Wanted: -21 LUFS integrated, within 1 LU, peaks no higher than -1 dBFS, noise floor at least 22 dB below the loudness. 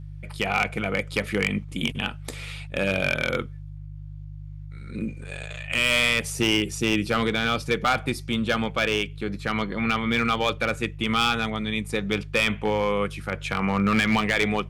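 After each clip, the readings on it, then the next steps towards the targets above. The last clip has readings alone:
clipped samples 0.6%; clipping level -14.5 dBFS; hum 50 Hz; highest harmonic 150 Hz; hum level -36 dBFS; loudness -24.5 LUFS; peak level -14.5 dBFS; loudness target -21.0 LUFS
-> clip repair -14.5 dBFS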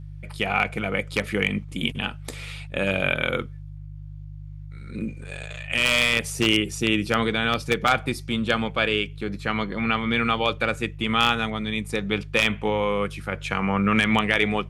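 clipped samples 0.0%; hum 50 Hz; highest harmonic 150 Hz; hum level -36 dBFS
-> de-hum 50 Hz, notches 3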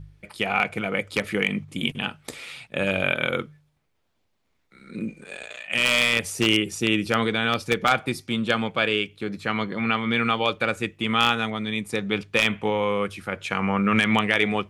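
hum not found; loudness -23.5 LUFS; peak level -5.0 dBFS; loudness target -21.0 LUFS
-> trim +2.5 dB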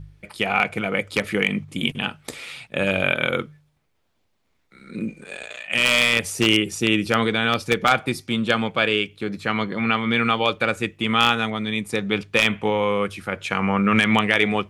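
loudness -21.0 LUFS; peak level -2.5 dBFS; noise floor -68 dBFS

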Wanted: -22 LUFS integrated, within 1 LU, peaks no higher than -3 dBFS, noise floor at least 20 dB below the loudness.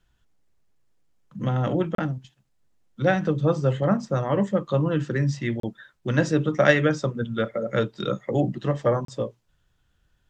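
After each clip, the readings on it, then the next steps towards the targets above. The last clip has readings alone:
dropouts 3; longest dropout 33 ms; loudness -24.5 LUFS; peak level -3.0 dBFS; loudness target -22.0 LUFS
-> interpolate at 1.95/5.60/9.05 s, 33 ms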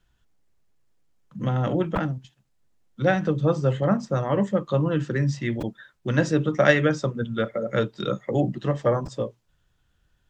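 dropouts 0; loudness -24.5 LUFS; peak level -3.0 dBFS; loudness target -22.0 LUFS
-> trim +2.5 dB; peak limiter -3 dBFS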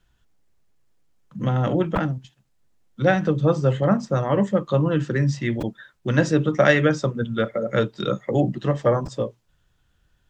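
loudness -22.0 LUFS; peak level -3.0 dBFS; noise floor -66 dBFS

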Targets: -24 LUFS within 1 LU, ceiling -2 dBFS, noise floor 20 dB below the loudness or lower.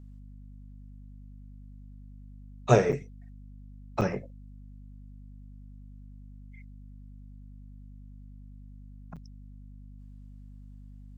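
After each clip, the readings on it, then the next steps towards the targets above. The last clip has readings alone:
dropouts 3; longest dropout 6.7 ms; hum 50 Hz; highest harmonic 250 Hz; hum level -45 dBFS; loudness -27.5 LUFS; peak level -7.0 dBFS; loudness target -24.0 LUFS
-> interpolate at 2.92/4.01/9.16 s, 6.7 ms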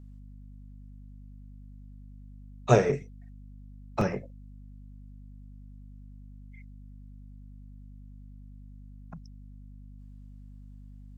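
dropouts 0; hum 50 Hz; highest harmonic 250 Hz; hum level -45 dBFS
-> hum notches 50/100/150/200/250 Hz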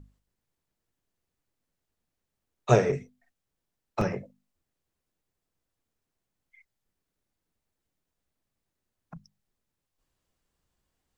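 hum not found; loudness -27.5 LUFS; peak level -7.0 dBFS; loudness target -24.0 LUFS
-> trim +3.5 dB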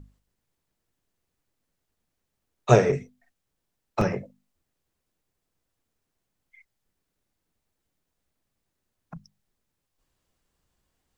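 loudness -24.0 LUFS; peak level -3.5 dBFS; noise floor -81 dBFS

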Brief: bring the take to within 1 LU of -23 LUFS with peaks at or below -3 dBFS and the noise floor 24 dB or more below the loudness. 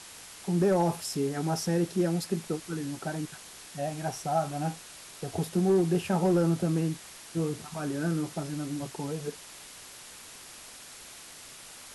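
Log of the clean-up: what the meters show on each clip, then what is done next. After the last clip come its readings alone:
clipped samples 0.3%; clipping level -18.0 dBFS; noise floor -48 dBFS; noise floor target -54 dBFS; loudness -30.0 LUFS; peak level -18.0 dBFS; loudness target -23.0 LUFS
-> clip repair -18 dBFS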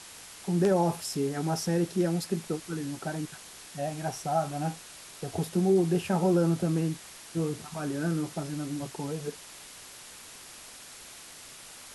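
clipped samples 0.0%; noise floor -48 dBFS; noise floor target -54 dBFS
-> noise reduction 6 dB, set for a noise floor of -48 dBFS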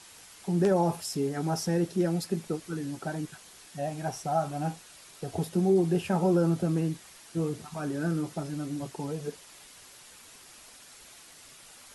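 noise floor -52 dBFS; noise floor target -54 dBFS
-> noise reduction 6 dB, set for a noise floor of -52 dBFS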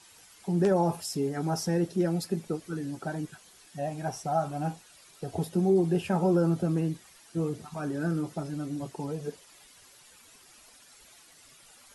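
noise floor -56 dBFS; loudness -30.0 LUFS; peak level -12.0 dBFS; loudness target -23.0 LUFS
-> trim +7 dB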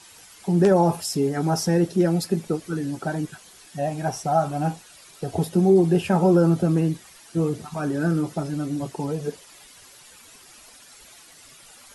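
loudness -23.0 LUFS; peak level -5.0 dBFS; noise floor -49 dBFS

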